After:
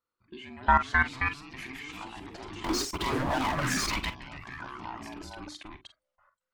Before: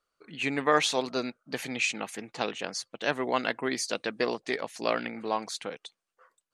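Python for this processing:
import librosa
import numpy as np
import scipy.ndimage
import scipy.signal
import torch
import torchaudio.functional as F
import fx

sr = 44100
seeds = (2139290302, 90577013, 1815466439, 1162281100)

y = fx.band_invert(x, sr, width_hz=500)
y = fx.lowpass(y, sr, hz=3400.0, slope=6)
y = fx.hum_notches(y, sr, base_hz=50, count=7)
y = fx.level_steps(y, sr, step_db=23)
y = fx.leveller(y, sr, passes=5, at=(2.64, 4.1))
y = fx.echo_pitch(y, sr, ms=335, semitones=2, count=2, db_per_echo=-3.0)
y = fx.echo_multitap(y, sr, ms=(42, 50), db=(-13.0, -15.5))
y = fx.bell_lfo(y, sr, hz=0.36, low_hz=310.0, high_hz=2600.0, db=9)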